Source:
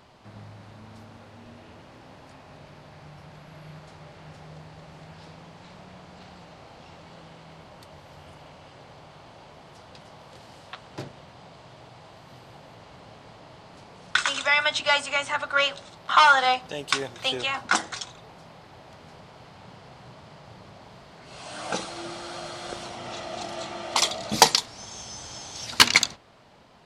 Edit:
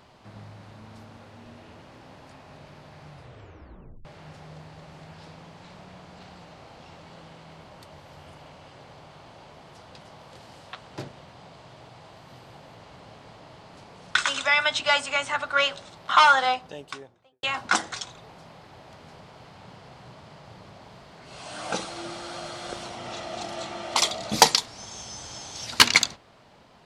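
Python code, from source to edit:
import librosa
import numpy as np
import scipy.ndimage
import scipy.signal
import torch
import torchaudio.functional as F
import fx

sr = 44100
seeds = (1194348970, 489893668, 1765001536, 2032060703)

y = fx.studio_fade_out(x, sr, start_s=16.2, length_s=1.23)
y = fx.edit(y, sr, fx.tape_stop(start_s=3.11, length_s=0.94), tone=tone)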